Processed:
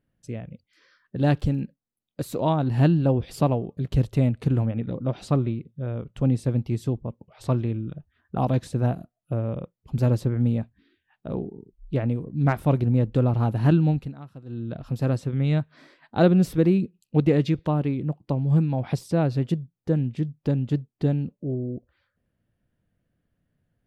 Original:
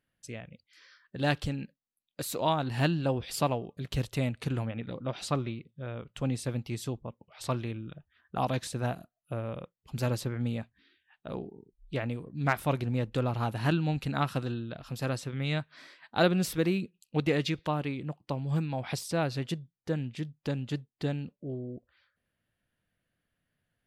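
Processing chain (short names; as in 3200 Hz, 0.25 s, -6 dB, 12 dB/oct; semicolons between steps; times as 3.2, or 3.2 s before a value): tilt shelf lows +8 dB, about 820 Hz; 1.17–1.59 crackle 50/s -50 dBFS; 13.86–14.74 dip -19.5 dB, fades 0.29 s; gain +2.5 dB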